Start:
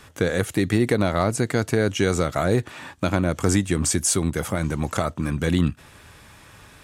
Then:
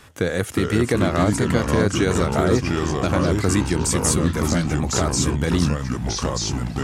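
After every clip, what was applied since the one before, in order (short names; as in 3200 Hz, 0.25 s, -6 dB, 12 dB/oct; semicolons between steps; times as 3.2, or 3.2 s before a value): echoes that change speed 0.324 s, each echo -3 st, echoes 3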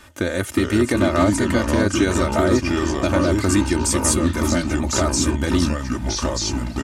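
comb 3.3 ms, depth 69%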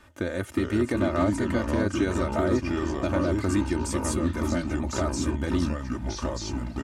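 high shelf 2900 Hz -8.5 dB; gain -6.5 dB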